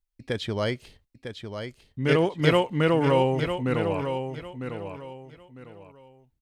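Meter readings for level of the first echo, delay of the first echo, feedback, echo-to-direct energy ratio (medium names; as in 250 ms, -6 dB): -8.0 dB, 952 ms, 27%, -7.5 dB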